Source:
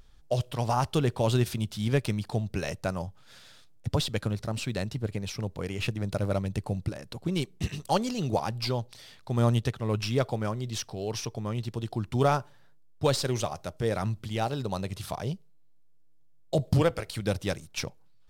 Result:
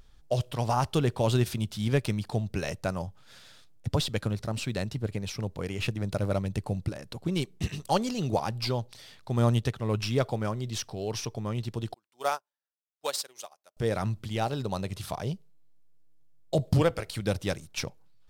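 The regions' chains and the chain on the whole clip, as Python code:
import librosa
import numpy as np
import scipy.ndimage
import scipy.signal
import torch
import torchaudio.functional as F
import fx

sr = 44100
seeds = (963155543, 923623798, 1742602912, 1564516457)

y = fx.chain(x, sr, fx.highpass(hz=600.0, slope=12),
    fx.high_shelf(hz=7500.0, db=11.0),
    fx.upward_expand(threshold_db=-45.0, expansion=2.5), at=(11.94, 13.77))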